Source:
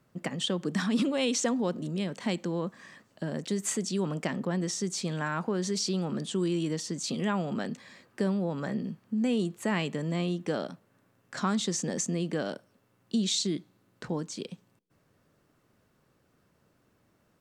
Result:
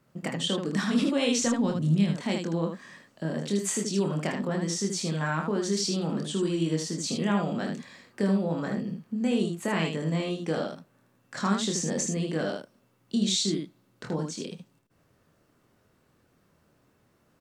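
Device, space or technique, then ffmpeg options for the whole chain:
slapback doubling: -filter_complex "[0:a]asplit=3[link_01][link_02][link_03];[link_02]adelay=25,volume=-4dB[link_04];[link_03]adelay=78,volume=-4.5dB[link_05];[link_01][link_04][link_05]amix=inputs=3:normalize=0,asplit=3[link_06][link_07][link_08];[link_06]afade=type=out:start_time=1.38:duration=0.02[link_09];[link_07]asubboost=boost=12:cutoff=140,afade=type=in:start_time=1.38:duration=0.02,afade=type=out:start_time=2.15:duration=0.02[link_10];[link_08]afade=type=in:start_time=2.15:duration=0.02[link_11];[link_09][link_10][link_11]amix=inputs=3:normalize=0"

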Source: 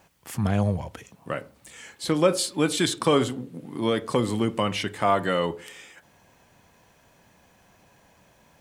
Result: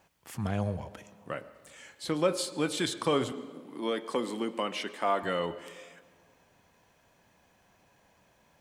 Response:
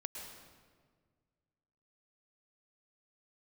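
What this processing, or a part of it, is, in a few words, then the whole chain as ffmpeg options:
filtered reverb send: -filter_complex "[0:a]asettb=1/sr,asplit=3[link_01][link_02][link_03];[link_01]atrim=end=3.324[link_04];[link_02]atrim=start=3.32:end=5.23,asetpts=PTS-STARTPTS,afade=type=in:duration=0.004:curve=qsin,afade=type=out:start_time=1.906:duration=0.004:curve=qsin,highpass=frequency=210:width=0.5412,highpass=frequency=210:width=1.3066[link_05];[link_03]atrim=start=5.226[link_06];[link_04][link_05]acrossfade=duration=0.004:curve1=hsin:curve2=qsin[link_07];[link_07][link_06]acrossfade=duration=0.004:curve1=qsin:curve2=hsin,asplit=2[link_08][link_09];[link_09]highpass=240,lowpass=7100[link_10];[1:a]atrim=start_sample=2205[link_11];[link_10][link_11]afir=irnorm=-1:irlink=0,volume=-8.5dB[link_12];[link_08][link_12]amix=inputs=2:normalize=0,volume=-8dB"

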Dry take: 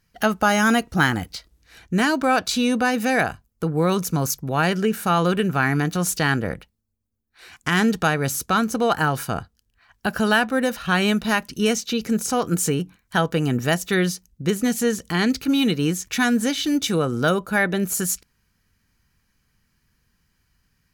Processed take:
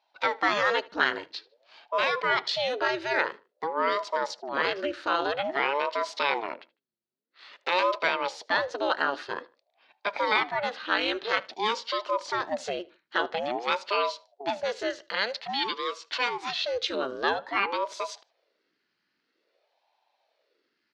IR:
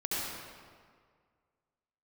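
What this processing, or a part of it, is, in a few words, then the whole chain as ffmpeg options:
voice changer toy: -filter_complex "[0:a]asettb=1/sr,asplit=3[link_01][link_02][link_03];[link_01]atrim=end=14.834[link_04];[link_02]atrim=start=14.83:end=16.6,asetpts=PTS-STARTPTS,afade=type=in:duration=0.004:curve=qsin,afade=type=out:start_time=1.766:duration=0.004:curve=qsin,highpass=frequency=290:width=0.5412,highpass=frequency=290:width=1.3066[link_05];[link_03]atrim=start=16.596[link_06];[link_04][link_05]acrossfade=duration=0.004:curve1=hsin:curve2=qsin[link_07];[link_07][link_06]acrossfade=duration=0.004:curve1=qsin:curve2=hsin,aeval=exprs='val(0)*sin(2*PI*470*n/s+470*0.75/0.5*sin(2*PI*0.5*n/s))':channel_layout=same,highpass=510,equalizer=frequency=750:width_type=q:width=4:gain=-4,equalizer=frequency=1100:width_type=q:width=4:gain=-4,equalizer=frequency=2300:width_type=q:width=4:gain=-3,equalizer=frequency=4300:width_type=q:width=4:gain=5,lowpass=frequency=4300:width=0.5412,lowpass=frequency=4300:width=1.3066,asplit=2[link_08][link_09];[link_09]adelay=76,lowpass=frequency=4800:poles=1,volume=-22dB,asplit=2[link_10][link_11];[link_11]adelay=76,lowpass=frequency=4800:poles=1,volume=0.31[link_12];[link_08][link_10][link_12]amix=inputs=3:normalize=0"

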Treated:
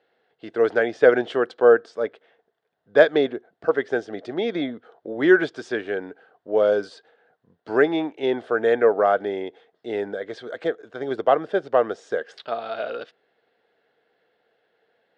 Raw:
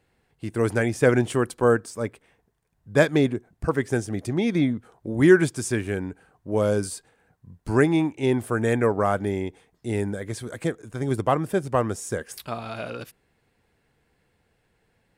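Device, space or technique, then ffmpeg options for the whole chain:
phone earpiece: -af "highpass=410,equalizer=frequency=460:width_type=q:width=4:gain=6,equalizer=frequency=670:width_type=q:width=4:gain=6,equalizer=frequency=1000:width_type=q:width=4:gain=-6,equalizer=frequency=1500:width_type=q:width=4:gain=3,equalizer=frequency=2400:width_type=q:width=4:gain=-7,equalizer=frequency=3400:width_type=q:width=4:gain=3,lowpass=frequency=4100:width=0.5412,lowpass=frequency=4100:width=1.3066,volume=2dB"

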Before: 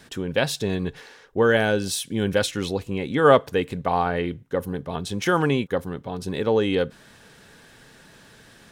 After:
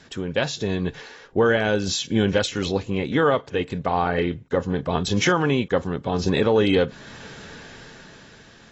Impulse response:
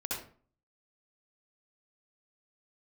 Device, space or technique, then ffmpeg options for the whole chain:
low-bitrate web radio: -af "dynaudnorm=framelen=250:gausssize=9:maxgain=13dB,alimiter=limit=-10dB:level=0:latency=1:release=411" -ar 22050 -c:a aac -b:a 24k

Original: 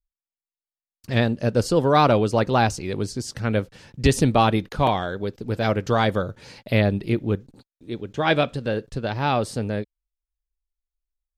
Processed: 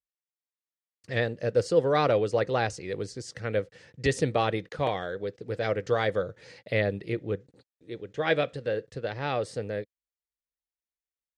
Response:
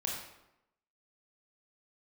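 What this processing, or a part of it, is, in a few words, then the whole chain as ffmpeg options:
car door speaker: -af "highpass=94,equalizer=frequency=230:width_type=q:width=4:gain=-8,equalizer=frequency=490:width_type=q:width=4:gain=9,equalizer=frequency=940:width_type=q:width=4:gain=-5,equalizer=frequency=1900:width_type=q:width=4:gain=8,lowpass=frequency=9100:width=0.5412,lowpass=frequency=9100:width=1.3066,volume=-8dB"

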